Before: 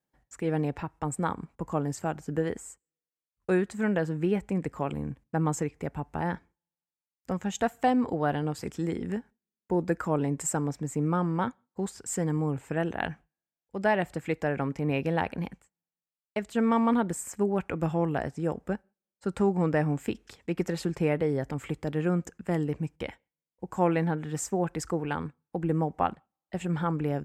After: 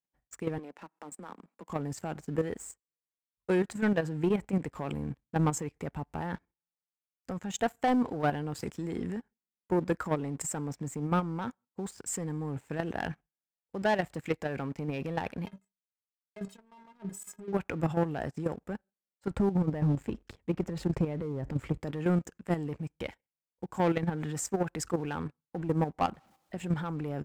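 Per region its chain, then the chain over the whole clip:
0.58–1.70 s: steep high-pass 180 Hz 48 dB/octave + compression 2.5:1, threshold -45 dBFS
15.46–17.53 s: compressor with a negative ratio -34 dBFS + inharmonic resonator 190 Hz, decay 0.23 s, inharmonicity 0.03
19.31–21.81 s: compression, threshold -27 dBFS + tilt EQ -2.5 dB/octave
26.10–26.58 s: jump at every zero crossing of -47.5 dBFS + treble shelf 9.2 kHz -7 dB + compression 2.5:1, threshold -36 dBFS
whole clip: waveshaping leveller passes 2; level held to a coarse grid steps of 10 dB; trim -4.5 dB

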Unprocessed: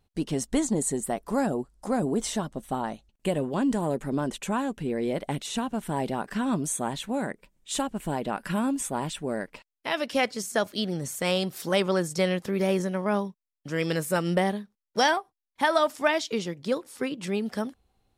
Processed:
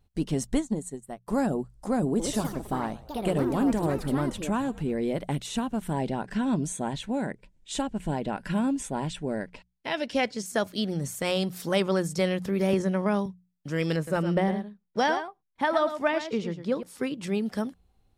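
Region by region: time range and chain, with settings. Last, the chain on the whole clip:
0.54–1.28 s: band-stop 4.9 kHz, Q 19 + upward expansion 2.5:1, over -38 dBFS
2.05–4.96 s: frequency-shifting echo 114 ms, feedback 54%, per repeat -83 Hz, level -20 dB + ever faster or slower copies 141 ms, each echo +4 st, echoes 2, each echo -6 dB
5.93–10.46 s: low-pass 7.8 kHz + band-stop 1.2 kHz, Q 5.9
12.73–13.26 s: low-pass 10 kHz + three bands compressed up and down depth 70%
13.96–16.83 s: low-pass 2.4 kHz 6 dB/octave + delay 110 ms -10 dB
whole clip: bass shelf 180 Hz +8.5 dB; hum notches 60/120/180 Hz; trim -2 dB

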